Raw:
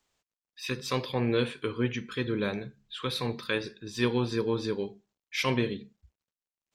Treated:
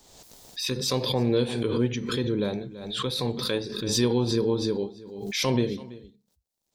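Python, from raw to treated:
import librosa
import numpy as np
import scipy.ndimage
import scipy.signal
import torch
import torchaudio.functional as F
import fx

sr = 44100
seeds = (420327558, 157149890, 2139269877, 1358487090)

p1 = fx.band_shelf(x, sr, hz=1800.0, db=-9.5, octaves=1.7)
p2 = p1 + fx.echo_single(p1, sr, ms=331, db=-18.5, dry=0)
p3 = fx.pre_swell(p2, sr, db_per_s=45.0)
y = F.gain(torch.from_numpy(p3), 3.0).numpy()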